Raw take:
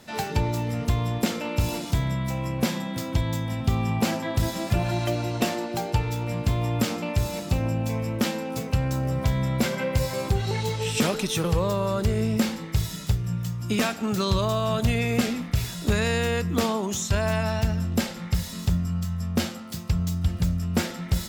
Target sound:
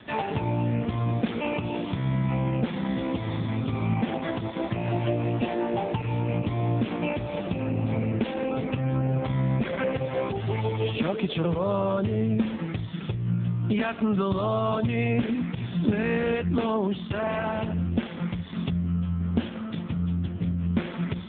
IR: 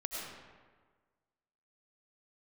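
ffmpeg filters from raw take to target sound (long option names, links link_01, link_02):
-filter_complex "[0:a]asettb=1/sr,asplit=3[link_01][link_02][link_03];[link_01]atrim=end=9.094[link_04];[link_02]atrim=start=9.09:end=9.82,asetpts=PTS-STARTPTS,afade=type=in:duration=0.004:curve=qsin,afade=type=out:start_time=0.726:duration=0.004:curve=qsin,bandreject=frequency=50:width_type=h:width=6,bandreject=frequency=100:width_type=h:width=6,bandreject=frequency=150:width_type=h:width=6,bandreject=frequency=200:width_type=h:width=6[link_05];[link_03]atrim=start=9.816[link_06];[link_04][link_05]acrossfade=duration=0.004:curve1=hsin:curve2=qsin[link_07];[link_07][link_06]acrossfade=duration=0.004:curve1=qsin:curve2=hsin,asplit=3[link_08][link_09][link_10];[link_08]afade=type=out:start_time=15.58:duration=0.02[link_11];[link_09]adynamicequalizer=threshold=0.0178:dfrequency=220:dqfactor=0.73:tfrequency=220:tqfactor=0.73:attack=5:release=100:ratio=0.375:range=3:mode=boostabove:tftype=bell,afade=type=in:start_time=15.58:duration=0.02,afade=type=out:start_time=16.34:duration=0.02[link_12];[link_10]afade=type=in:start_time=16.34:duration=0.02[link_13];[link_11][link_12][link_13]amix=inputs=3:normalize=0,acompressor=threshold=-31dB:ratio=3,asettb=1/sr,asplit=3[link_14][link_15][link_16];[link_14]atrim=end=4.174[link_17];[link_15]atrim=start=4.17:end=4.84,asetpts=PTS-STARTPTS,afade=type=in:duration=0.004:curve=qsin,afade=type=out:start_time=0.666:duration=0.004:curve=qsin,aeval=exprs='sgn(val(0))*max(abs(val(0))-0.00335,0)':channel_layout=same[link_18];[link_16]atrim=start=4.836[link_19];[link_17][link_18]acrossfade=duration=0.004:curve1=hsin:curve2=qsin[link_20];[link_20][link_19]acrossfade=duration=0.004:curve1=qsin:curve2=hsin,volume=8.5dB" -ar 8000 -c:a libopencore_amrnb -b:a 5150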